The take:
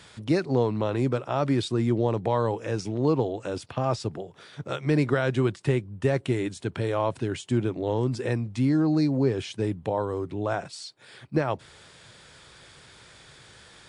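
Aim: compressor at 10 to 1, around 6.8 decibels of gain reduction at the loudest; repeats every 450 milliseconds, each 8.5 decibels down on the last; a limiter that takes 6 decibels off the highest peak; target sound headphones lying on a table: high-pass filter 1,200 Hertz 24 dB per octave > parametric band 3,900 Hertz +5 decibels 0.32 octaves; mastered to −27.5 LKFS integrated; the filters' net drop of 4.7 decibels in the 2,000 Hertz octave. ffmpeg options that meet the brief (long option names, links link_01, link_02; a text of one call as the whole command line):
ffmpeg -i in.wav -af "equalizer=frequency=2000:width_type=o:gain=-6,acompressor=threshold=-25dB:ratio=10,alimiter=limit=-21.5dB:level=0:latency=1,highpass=frequency=1200:width=0.5412,highpass=frequency=1200:width=1.3066,equalizer=frequency=3900:width_type=o:width=0.32:gain=5,aecho=1:1:450|900|1350|1800:0.376|0.143|0.0543|0.0206,volume=17dB" out.wav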